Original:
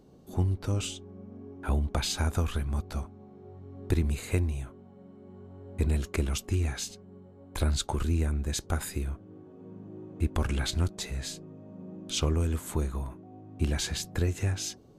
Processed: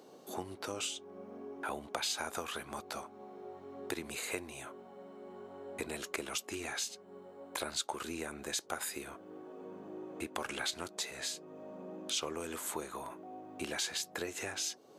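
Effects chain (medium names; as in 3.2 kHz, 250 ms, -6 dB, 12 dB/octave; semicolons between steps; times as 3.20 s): high-pass 490 Hz 12 dB/octave; compression 2:1, threshold -50 dBFS, peak gain reduction 12.5 dB; trim +8 dB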